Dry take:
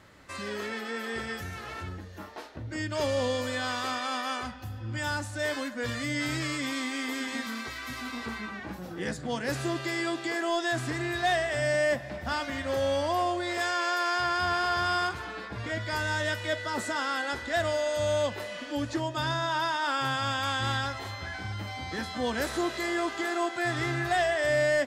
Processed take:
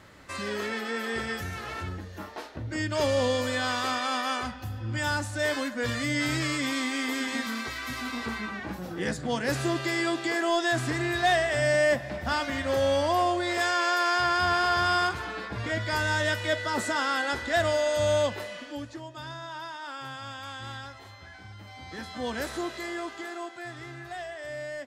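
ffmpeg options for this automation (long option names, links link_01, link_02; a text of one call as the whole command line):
ffmpeg -i in.wav -af "volume=11dB,afade=type=out:start_time=18.16:duration=0.77:silence=0.223872,afade=type=in:start_time=21.61:duration=0.72:silence=0.398107,afade=type=out:start_time=22.33:duration=1.46:silence=0.316228" out.wav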